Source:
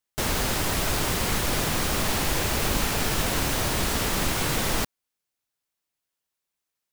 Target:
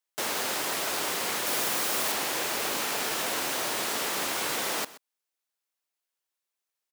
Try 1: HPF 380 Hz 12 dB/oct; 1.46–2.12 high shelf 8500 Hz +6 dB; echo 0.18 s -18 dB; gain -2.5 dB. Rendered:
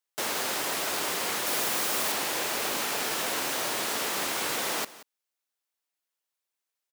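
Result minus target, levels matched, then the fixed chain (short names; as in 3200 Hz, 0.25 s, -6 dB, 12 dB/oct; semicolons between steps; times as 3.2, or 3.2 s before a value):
echo 53 ms late
HPF 380 Hz 12 dB/oct; 1.46–2.12 high shelf 8500 Hz +6 dB; echo 0.127 s -18 dB; gain -2.5 dB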